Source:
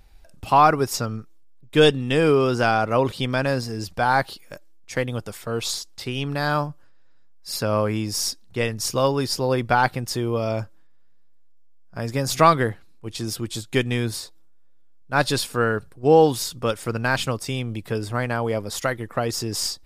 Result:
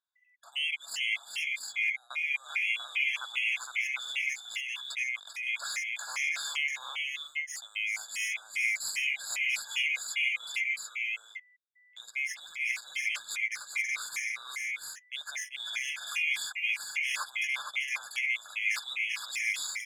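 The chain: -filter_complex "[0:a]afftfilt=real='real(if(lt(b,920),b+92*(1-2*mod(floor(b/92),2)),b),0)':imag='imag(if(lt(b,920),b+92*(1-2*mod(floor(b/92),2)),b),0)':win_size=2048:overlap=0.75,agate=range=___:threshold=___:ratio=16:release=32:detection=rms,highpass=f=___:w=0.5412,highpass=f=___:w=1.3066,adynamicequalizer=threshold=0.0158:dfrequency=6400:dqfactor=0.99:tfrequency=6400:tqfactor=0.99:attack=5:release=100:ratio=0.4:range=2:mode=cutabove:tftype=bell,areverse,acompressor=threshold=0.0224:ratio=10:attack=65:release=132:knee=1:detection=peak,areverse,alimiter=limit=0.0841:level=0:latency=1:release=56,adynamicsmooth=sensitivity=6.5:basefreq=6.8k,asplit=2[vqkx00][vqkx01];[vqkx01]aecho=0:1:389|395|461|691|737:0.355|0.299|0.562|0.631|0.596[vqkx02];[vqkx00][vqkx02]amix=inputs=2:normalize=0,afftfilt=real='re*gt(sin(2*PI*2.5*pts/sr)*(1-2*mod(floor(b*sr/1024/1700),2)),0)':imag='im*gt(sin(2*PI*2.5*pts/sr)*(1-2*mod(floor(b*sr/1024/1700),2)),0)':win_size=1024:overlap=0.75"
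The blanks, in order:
0.0794, 0.0112, 920, 920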